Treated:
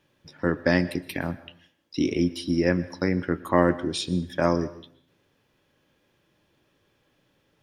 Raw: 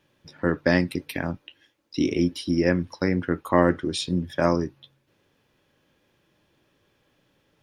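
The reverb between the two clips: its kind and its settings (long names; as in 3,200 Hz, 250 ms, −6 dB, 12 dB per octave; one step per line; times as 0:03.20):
dense smooth reverb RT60 0.61 s, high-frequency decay 0.85×, pre-delay 105 ms, DRR 17.5 dB
level −1 dB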